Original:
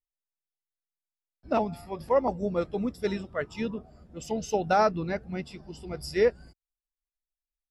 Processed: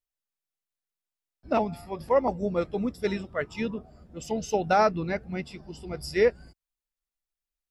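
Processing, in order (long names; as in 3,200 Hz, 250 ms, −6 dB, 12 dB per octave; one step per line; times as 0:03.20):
dynamic equaliser 2,200 Hz, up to +4 dB, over −51 dBFS, Q 3.3
level +1 dB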